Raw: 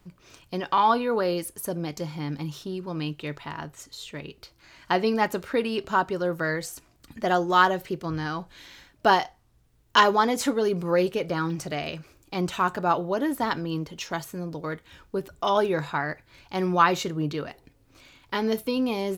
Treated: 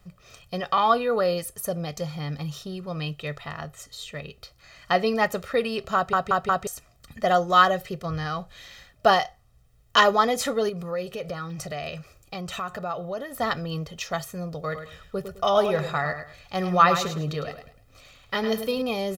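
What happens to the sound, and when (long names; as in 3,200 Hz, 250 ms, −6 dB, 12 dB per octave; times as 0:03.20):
0:05.95: stutter in place 0.18 s, 4 plays
0:10.69–0:13.35: downward compressor 2.5 to 1, threshold −32 dBFS
0:14.63–0:18.82: repeating echo 105 ms, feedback 28%, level −9 dB
whole clip: comb filter 1.6 ms, depth 73%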